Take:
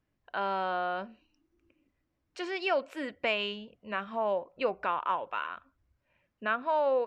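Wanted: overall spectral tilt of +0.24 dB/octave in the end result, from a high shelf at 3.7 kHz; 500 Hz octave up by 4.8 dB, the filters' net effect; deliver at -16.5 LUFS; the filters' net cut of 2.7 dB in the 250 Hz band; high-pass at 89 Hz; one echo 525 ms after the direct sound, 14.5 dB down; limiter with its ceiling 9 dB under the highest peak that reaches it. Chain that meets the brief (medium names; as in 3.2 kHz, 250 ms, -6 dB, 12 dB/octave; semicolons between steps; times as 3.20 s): high-pass 89 Hz; peaking EQ 250 Hz -7.5 dB; peaking EQ 500 Hz +7 dB; treble shelf 3.7 kHz +6.5 dB; peak limiter -21 dBFS; delay 525 ms -14.5 dB; trim +16 dB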